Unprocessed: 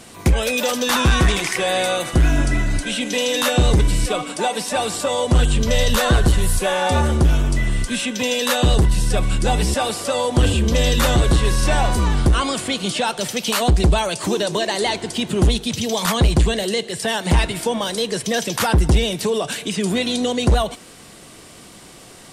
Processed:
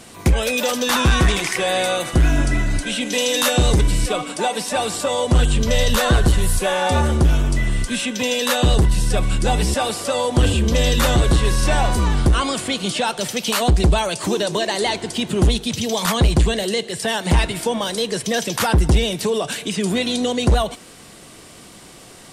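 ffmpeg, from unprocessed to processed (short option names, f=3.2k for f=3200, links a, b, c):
-filter_complex "[0:a]asettb=1/sr,asplit=3[a][b][c];[a]atrim=end=3.124[d];[b]atrim=start=3.12:end=3.81,asetpts=PTS-STARTPTS,afade=t=in:d=0.004:c=qsin,afade=t=out:st=0.686:d=0.004:c=qsin,bass=f=250:g=-1,treble=f=4k:g=4[e];[c]atrim=start=3.806[f];[d][e]acrossfade=d=0.004:c1=hsin:c2=qsin[g];[g][f]acrossfade=d=0.004:c1=qsin:c2=hsin"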